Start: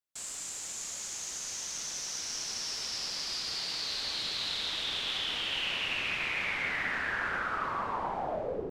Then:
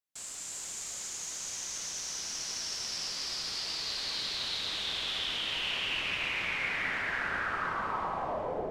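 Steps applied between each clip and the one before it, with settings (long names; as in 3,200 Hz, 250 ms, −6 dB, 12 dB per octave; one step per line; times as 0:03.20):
reverb whose tail is shaped and stops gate 420 ms rising, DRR 3 dB
level −2 dB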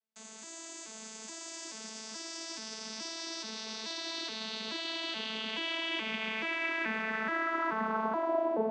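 vocoder with an arpeggio as carrier bare fifth, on A3, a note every 428 ms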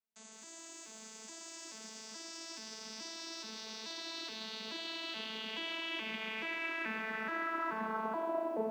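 feedback echo at a low word length 157 ms, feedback 55%, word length 9 bits, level −13 dB
level −5 dB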